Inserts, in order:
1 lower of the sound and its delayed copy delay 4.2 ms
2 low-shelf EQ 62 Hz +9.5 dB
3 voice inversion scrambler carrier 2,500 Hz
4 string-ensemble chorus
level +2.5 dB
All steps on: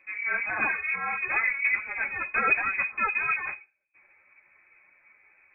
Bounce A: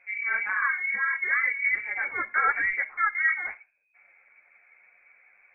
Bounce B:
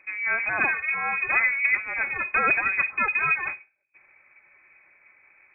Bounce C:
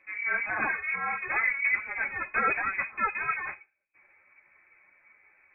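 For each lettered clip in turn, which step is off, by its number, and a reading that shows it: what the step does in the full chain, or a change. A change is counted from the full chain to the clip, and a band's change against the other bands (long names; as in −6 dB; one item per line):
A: 1, 250 Hz band −9.0 dB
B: 4, change in integrated loudness +3.0 LU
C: 2, 2 kHz band −2.0 dB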